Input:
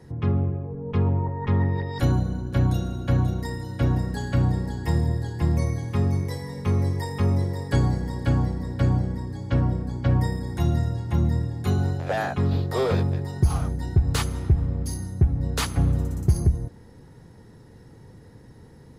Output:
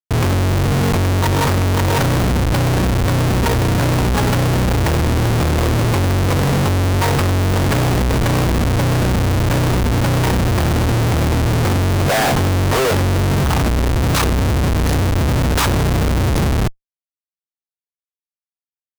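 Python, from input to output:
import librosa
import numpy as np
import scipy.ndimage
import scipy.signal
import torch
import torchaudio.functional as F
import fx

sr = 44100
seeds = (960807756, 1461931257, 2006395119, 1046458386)

y = fx.dynamic_eq(x, sr, hz=1000.0, q=1.2, threshold_db=-46.0, ratio=4.0, max_db=5)
y = fx.schmitt(y, sr, flips_db=-33.5)
y = F.gain(torch.from_numpy(y), 8.5).numpy()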